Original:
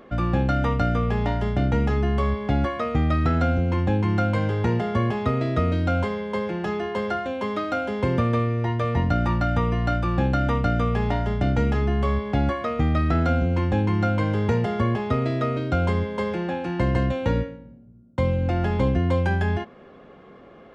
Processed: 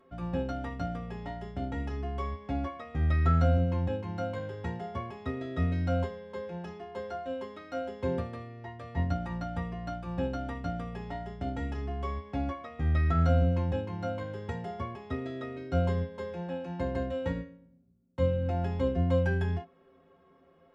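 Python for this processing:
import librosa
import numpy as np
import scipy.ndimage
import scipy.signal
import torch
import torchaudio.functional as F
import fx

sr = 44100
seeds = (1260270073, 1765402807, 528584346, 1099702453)

y = fx.stiff_resonator(x, sr, f0_hz=80.0, decay_s=0.22, stiffness=0.03)
y = fx.upward_expand(y, sr, threshold_db=-37.0, expansion=1.5)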